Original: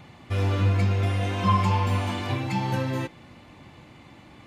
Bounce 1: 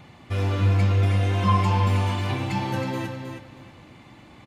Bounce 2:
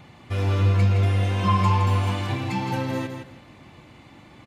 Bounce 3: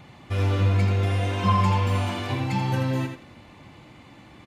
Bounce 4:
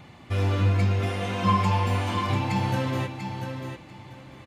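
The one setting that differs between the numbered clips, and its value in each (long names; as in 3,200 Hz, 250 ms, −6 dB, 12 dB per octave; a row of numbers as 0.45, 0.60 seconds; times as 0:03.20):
repeating echo, delay time: 318, 164, 84, 692 milliseconds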